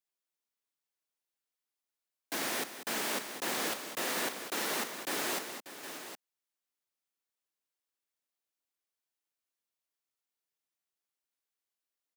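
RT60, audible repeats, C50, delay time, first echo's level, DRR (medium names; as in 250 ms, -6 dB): no reverb, 3, no reverb, 193 ms, -11.5 dB, no reverb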